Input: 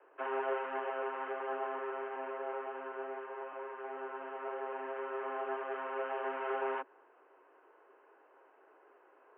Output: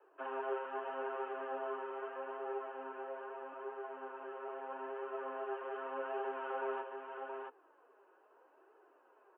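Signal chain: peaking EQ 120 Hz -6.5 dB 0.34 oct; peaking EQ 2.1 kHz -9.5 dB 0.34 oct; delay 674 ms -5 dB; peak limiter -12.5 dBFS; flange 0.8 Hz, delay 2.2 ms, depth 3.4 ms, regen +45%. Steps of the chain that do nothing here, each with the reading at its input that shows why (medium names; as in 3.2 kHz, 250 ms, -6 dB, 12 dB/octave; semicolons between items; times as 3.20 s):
peaking EQ 120 Hz: input has nothing below 250 Hz; peak limiter -12.5 dBFS: peak at its input -24.0 dBFS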